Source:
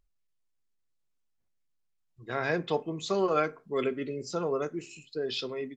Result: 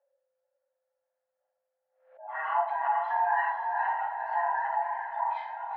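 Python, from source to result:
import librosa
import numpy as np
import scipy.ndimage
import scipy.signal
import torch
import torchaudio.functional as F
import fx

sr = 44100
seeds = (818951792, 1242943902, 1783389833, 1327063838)

p1 = fx.band_swap(x, sr, width_hz=500)
p2 = scipy.signal.sosfilt(scipy.signal.cheby1(3, 1.0, 1500.0, 'lowpass', fs=sr, output='sos'), p1)
p3 = fx.notch(p2, sr, hz=1200.0, q=20.0)
p4 = fx.level_steps(p3, sr, step_db=11)
p5 = scipy.signal.sosfilt(scipy.signal.cheby1(6, 3, 550.0, 'highpass', fs=sr, output='sos'), p4)
p6 = p5 + fx.echo_diffused(p5, sr, ms=478, feedback_pct=40, wet_db=-5, dry=0)
p7 = fx.room_shoebox(p6, sr, seeds[0], volume_m3=100.0, walls='mixed', distance_m=2.4)
y = fx.pre_swell(p7, sr, db_per_s=110.0)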